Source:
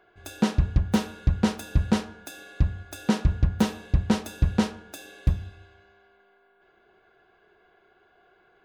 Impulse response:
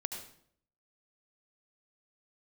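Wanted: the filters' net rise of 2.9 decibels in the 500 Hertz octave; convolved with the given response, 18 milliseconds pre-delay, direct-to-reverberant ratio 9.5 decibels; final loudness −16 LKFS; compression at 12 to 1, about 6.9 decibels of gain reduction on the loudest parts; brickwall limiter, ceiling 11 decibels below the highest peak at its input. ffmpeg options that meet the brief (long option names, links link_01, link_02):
-filter_complex "[0:a]equalizer=frequency=500:width_type=o:gain=3.5,acompressor=threshold=-22dB:ratio=12,alimiter=limit=-23dB:level=0:latency=1,asplit=2[link_01][link_02];[1:a]atrim=start_sample=2205,adelay=18[link_03];[link_02][link_03]afir=irnorm=-1:irlink=0,volume=-10dB[link_04];[link_01][link_04]amix=inputs=2:normalize=0,volume=20.5dB"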